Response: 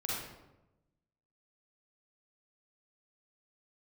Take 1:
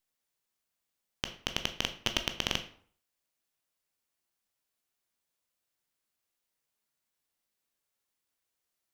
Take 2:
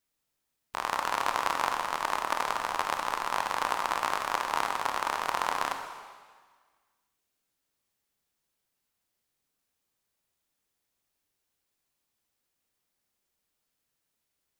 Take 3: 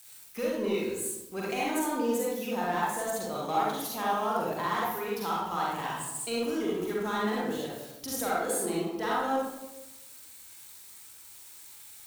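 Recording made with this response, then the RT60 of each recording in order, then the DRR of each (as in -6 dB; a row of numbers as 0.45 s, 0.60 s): 3; 0.55 s, 1.6 s, 1.0 s; 7.0 dB, 5.0 dB, -6.0 dB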